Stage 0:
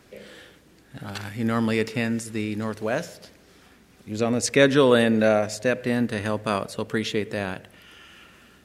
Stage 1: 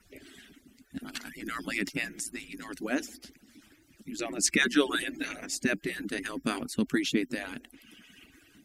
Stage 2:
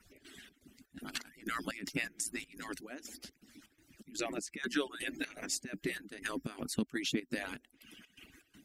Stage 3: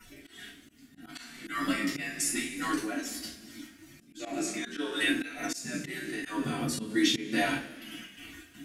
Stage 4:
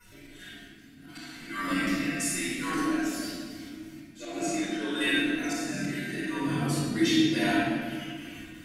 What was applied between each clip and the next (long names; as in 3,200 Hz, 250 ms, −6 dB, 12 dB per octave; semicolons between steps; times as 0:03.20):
harmonic-percussive split with one part muted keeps percussive; octave-band graphic EQ 125/250/500/1,000/4,000 Hz −7/+11/−11/−11/−4 dB; level +2 dB
harmonic and percussive parts rebalanced harmonic −5 dB; downward compressor 3 to 1, threshold −31 dBFS, peak gain reduction 9 dB; gate pattern "x.xx.xx.xx..x" 123 BPM −12 dB
coupled-rooms reverb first 0.23 s, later 1.5 s, from −21 dB, DRR −8.5 dB; volume swells 250 ms; harmonic and percussive parts rebalanced percussive −15 dB; level +8 dB
rectangular room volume 2,600 cubic metres, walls mixed, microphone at 5.1 metres; level −5.5 dB